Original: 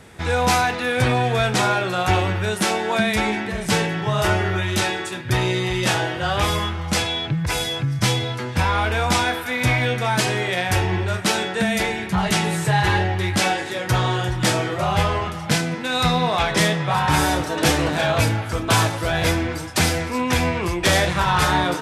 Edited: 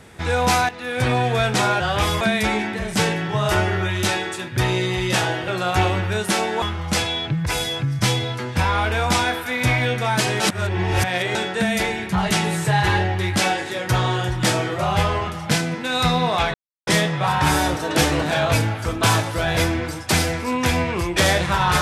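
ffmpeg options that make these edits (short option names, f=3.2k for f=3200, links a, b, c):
-filter_complex "[0:a]asplit=9[a][b][c][d][e][f][g][h][i];[a]atrim=end=0.69,asetpts=PTS-STARTPTS,afade=t=out:st=0.686:d=0.004:c=hsin:silence=0.211349[j];[b]atrim=start=0.69:end=1.802,asetpts=PTS-STARTPTS,afade=t=in:d=0.45:silence=0.211349[k];[c]atrim=start=6.208:end=6.622[l];[d]atrim=start=2.938:end=6.212[m];[e]atrim=start=1.798:end=2.942[n];[f]atrim=start=6.618:end=10.402[o];[g]atrim=start=10.398:end=11.352,asetpts=PTS-STARTPTS,areverse[p];[h]atrim=start=11.348:end=16.54,asetpts=PTS-STARTPTS,afade=t=out:st=5.188:d=0.004:c=hsin,apad=pad_dur=0.33[q];[i]atrim=start=16.54,asetpts=PTS-STARTPTS,afade=t=in:d=0.004:c=hsin[r];[j][k]concat=n=2:v=0:a=1[s];[s][l]acrossfade=d=0.004:c1=hsin:c2=hsin[t];[t][m]acrossfade=d=0.004:c1=hsin:c2=hsin[u];[u][n]acrossfade=d=0.004:c1=hsin:c2=hsin[v];[v][o]acrossfade=d=0.004:c1=hsin:c2=hsin[w];[w][p]acrossfade=d=0.004:c1=hsin:c2=hsin[x];[q][r]concat=n=2:v=0:a=1[y];[x][y]acrossfade=d=0.004:c1=hsin:c2=hsin"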